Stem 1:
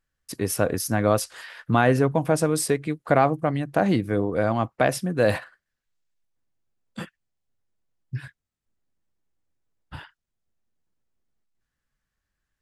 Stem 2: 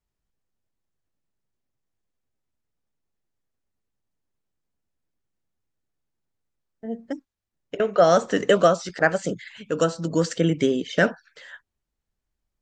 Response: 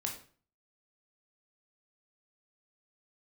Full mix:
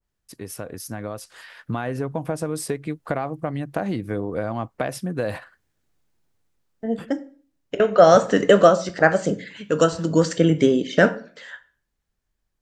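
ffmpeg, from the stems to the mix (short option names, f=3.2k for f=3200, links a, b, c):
-filter_complex "[0:a]acompressor=threshold=-21dB:ratio=10,volume=-8dB[a];[1:a]volume=0dB,asplit=2[b][c];[c]volume=-6.5dB[d];[2:a]atrim=start_sample=2205[e];[d][e]afir=irnorm=-1:irlink=0[f];[a][b][f]amix=inputs=3:normalize=0,dynaudnorm=f=400:g=7:m=8dB,adynamicequalizer=threshold=0.0112:dfrequency=1500:dqfactor=0.7:tfrequency=1500:tqfactor=0.7:attack=5:release=100:ratio=0.375:range=2:mode=cutabove:tftype=highshelf"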